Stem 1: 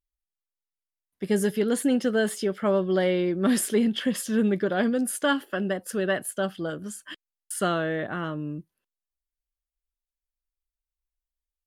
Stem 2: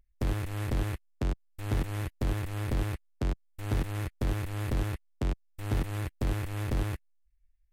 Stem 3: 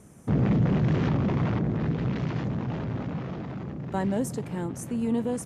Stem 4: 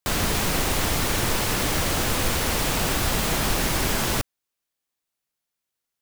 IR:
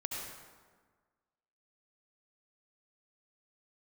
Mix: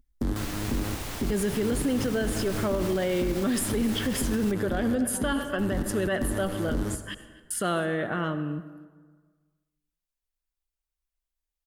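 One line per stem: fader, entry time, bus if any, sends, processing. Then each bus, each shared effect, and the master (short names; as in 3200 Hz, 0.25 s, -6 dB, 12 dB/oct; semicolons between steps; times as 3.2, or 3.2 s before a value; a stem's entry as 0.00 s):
0.0 dB, 0.00 s, send -10.5 dB, echo send -20 dB, dry
+0.5 dB, 0.00 s, send -12.5 dB, no echo send, fifteen-band EQ 100 Hz -5 dB, 250 Hz +12 dB, 630 Hz -4 dB, 2500 Hz -10 dB
-15.5 dB, 1.20 s, no send, no echo send, dry
-12.5 dB, 0.30 s, no send, no echo send, dry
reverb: on, RT60 1.5 s, pre-delay 62 ms
echo: echo 0.254 s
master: limiter -18.5 dBFS, peak gain reduction 12 dB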